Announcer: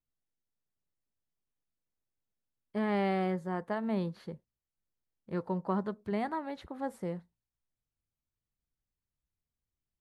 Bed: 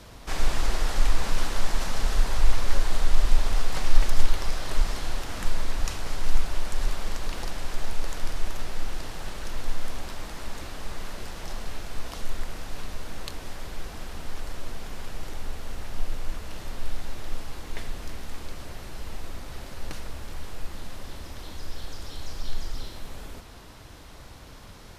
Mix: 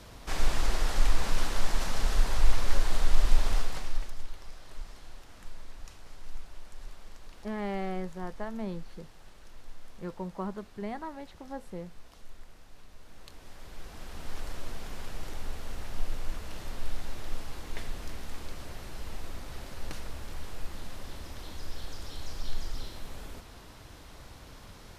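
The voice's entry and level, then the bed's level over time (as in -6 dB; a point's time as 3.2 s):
4.70 s, -4.0 dB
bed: 3.55 s -2.5 dB
4.19 s -18 dB
12.88 s -18 dB
14.35 s -3 dB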